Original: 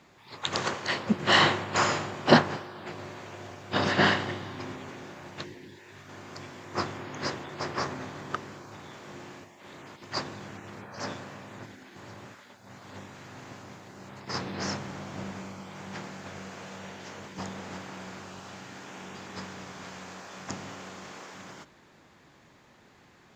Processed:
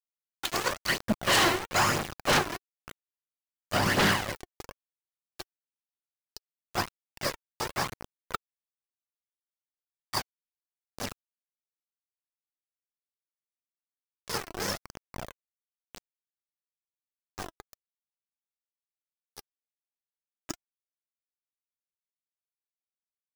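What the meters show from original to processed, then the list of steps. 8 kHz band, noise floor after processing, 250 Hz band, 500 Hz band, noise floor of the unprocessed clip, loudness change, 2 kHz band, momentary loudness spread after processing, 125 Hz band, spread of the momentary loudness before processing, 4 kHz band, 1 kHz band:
+5.0 dB, under -85 dBFS, -4.5 dB, -3.0 dB, -58 dBFS, +1.5 dB, -1.5 dB, 23 LU, -2.5 dB, 23 LU, -1.0 dB, -1.5 dB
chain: spectral noise reduction 15 dB; in parallel at +1.5 dB: compression 16:1, threshold -43 dBFS, peak gain reduction 31.5 dB; on the sum: small samples zeroed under -28 dBFS; phaser 1 Hz, delay 3.1 ms, feedback 47%; wavefolder -17 dBFS

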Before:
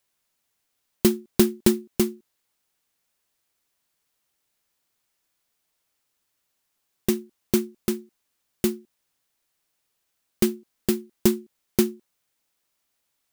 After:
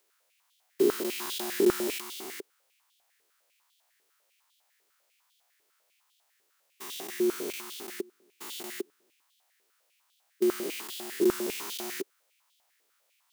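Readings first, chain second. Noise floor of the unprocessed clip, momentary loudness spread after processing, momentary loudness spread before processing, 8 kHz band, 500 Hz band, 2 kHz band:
-77 dBFS, 16 LU, 8 LU, -5.0 dB, -2.0 dB, 0.0 dB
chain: spectrogram pixelated in time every 400 ms; step-sequenced high-pass 10 Hz 400–3300 Hz; trim +4.5 dB

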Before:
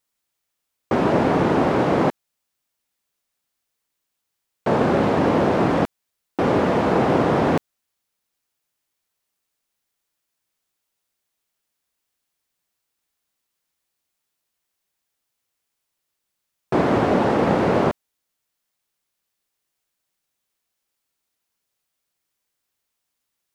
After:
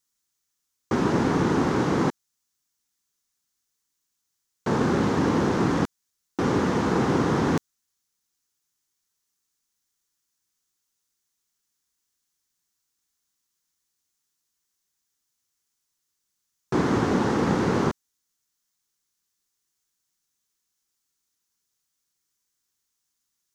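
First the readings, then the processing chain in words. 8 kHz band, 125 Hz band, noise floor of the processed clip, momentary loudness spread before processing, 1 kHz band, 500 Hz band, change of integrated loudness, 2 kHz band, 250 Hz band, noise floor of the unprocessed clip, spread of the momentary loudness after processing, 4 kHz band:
no reading, -1.5 dB, -79 dBFS, 6 LU, -6.0 dB, -6.5 dB, -4.0 dB, -3.5 dB, -2.5 dB, -79 dBFS, 6 LU, -2.0 dB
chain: fifteen-band graphic EQ 630 Hz -12 dB, 2.5 kHz -5 dB, 6.3 kHz +8 dB; trim -1.5 dB

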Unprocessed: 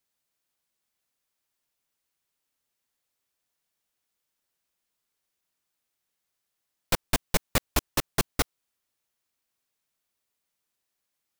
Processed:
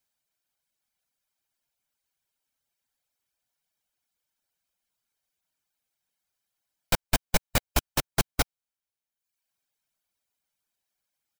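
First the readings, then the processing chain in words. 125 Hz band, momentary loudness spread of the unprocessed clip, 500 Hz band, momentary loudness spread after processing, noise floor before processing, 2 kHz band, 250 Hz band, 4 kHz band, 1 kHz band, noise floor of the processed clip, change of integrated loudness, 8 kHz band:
+1.5 dB, 3 LU, -0.5 dB, 3 LU, -82 dBFS, +0.5 dB, -1.0 dB, +0.5 dB, +0.5 dB, under -85 dBFS, +0.5 dB, 0.0 dB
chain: reverb removal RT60 0.92 s; comb 1.3 ms, depth 30%

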